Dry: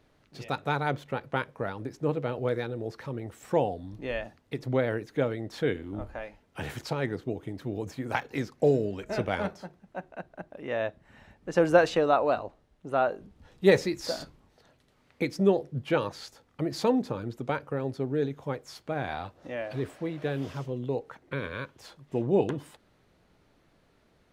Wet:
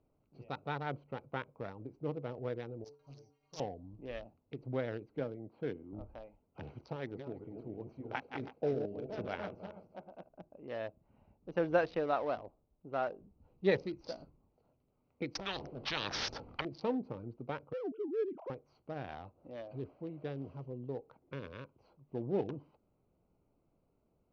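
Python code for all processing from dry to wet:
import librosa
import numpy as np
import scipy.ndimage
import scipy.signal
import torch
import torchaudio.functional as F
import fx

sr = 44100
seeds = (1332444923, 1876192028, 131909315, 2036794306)

y = fx.chain(x, sr, fx.resample_bad(factor=8, down='none', up='zero_stuff'),
    fx.stiff_resonator(f0_hz=140.0, decay_s=0.35, stiffness=0.008),
    fx.doppler_dist(depth_ms=0.68), at=(2.84, 3.6))
y = fx.chain(y, sr, fx.highpass(hz=110.0, slope=12),
    fx.air_absorb(metres=310.0), at=(5.19, 5.93))
y = fx.chain(y, sr, fx.reverse_delay_fb(ms=162, feedback_pct=44, wet_db=-5.5),
    fx.low_shelf(hz=180.0, db=-6.0), at=(6.96, 10.29))
y = fx.chain(y, sr, fx.peak_eq(hz=7000.0, db=-8.0, octaves=0.28),
    fx.spectral_comp(ratio=10.0), at=(15.35, 16.65))
y = fx.chain(y, sr, fx.sine_speech(),
    fx.air_absorb(metres=180.0),
    fx.env_flatten(amount_pct=50), at=(17.73, 18.5))
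y = fx.wiener(y, sr, points=25)
y = scipy.signal.sosfilt(scipy.signal.ellip(4, 1.0, 40, 5700.0, 'lowpass', fs=sr, output='sos'), y)
y = y * librosa.db_to_amplitude(-8.5)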